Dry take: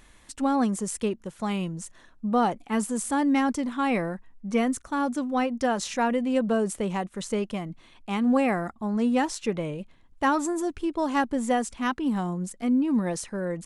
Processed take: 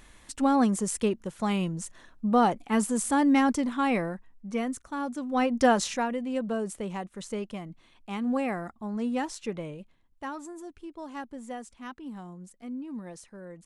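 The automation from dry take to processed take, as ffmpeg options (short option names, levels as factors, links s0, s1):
-af "volume=3.76,afade=t=out:st=3.56:d=0.96:silence=0.446684,afade=t=in:st=5.21:d=0.47:silence=0.298538,afade=t=out:st=5.68:d=0.39:silence=0.298538,afade=t=out:st=9.6:d=0.69:silence=0.398107"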